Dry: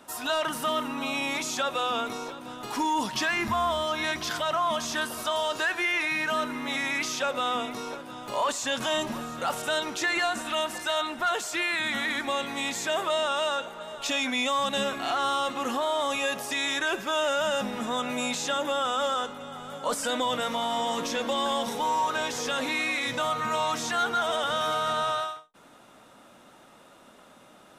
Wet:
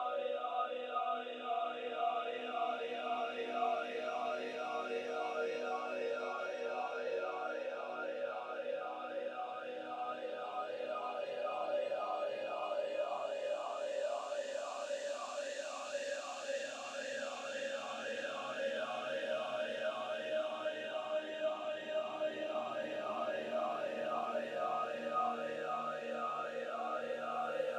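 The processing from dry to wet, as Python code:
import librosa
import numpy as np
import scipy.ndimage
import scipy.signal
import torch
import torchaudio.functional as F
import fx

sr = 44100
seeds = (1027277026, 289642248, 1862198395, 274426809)

y = fx.over_compress(x, sr, threshold_db=-33.0, ratio=-1.0)
y = fx.paulstretch(y, sr, seeds[0], factor=14.0, window_s=0.5, from_s=7.44)
y = fx.vowel_sweep(y, sr, vowels='a-e', hz=1.9)
y = y * 10.0 ** (3.5 / 20.0)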